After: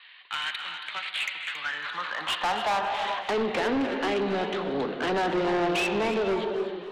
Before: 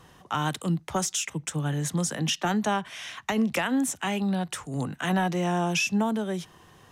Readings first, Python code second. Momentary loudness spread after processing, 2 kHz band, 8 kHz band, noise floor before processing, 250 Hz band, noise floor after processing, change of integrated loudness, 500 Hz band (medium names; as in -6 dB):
7 LU, +2.5 dB, -14.5 dB, -55 dBFS, -4.0 dB, -41 dBFS, 0.0 dB, +5.0 dB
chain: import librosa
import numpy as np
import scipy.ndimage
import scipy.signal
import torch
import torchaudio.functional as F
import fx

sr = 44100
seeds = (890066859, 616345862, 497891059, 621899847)

y = fx.cvsd(x, sr, bps=32000)
y = scipy.signal.sosfilt(scipy.signal.butter(16, 4300.0, 'lowpass', fs=sr, output='sos'), y)
y = fx.filter_sweep_highpass(y, sr, from_hz=2200.0, to_hz=380.0, start_s=1.22, end_s=3.5, q=2.4)
y = fx.rev_gated(y, sr, seeds[0], gate_ms=460, shape='flat', drr_db=6.5)
y = 10.0 ** (-28.0 / 20.0) * np.tanh(y / 10.0 ** (-28.0 / 20.0))
y = fx.echo_warbled(y, sr, ms=270, feedback_pct=38, rate_hz=2.8, cents=181, wet_db=-11.5)
y = F.gain(torch.from_numpy(y), 5.0).numpy()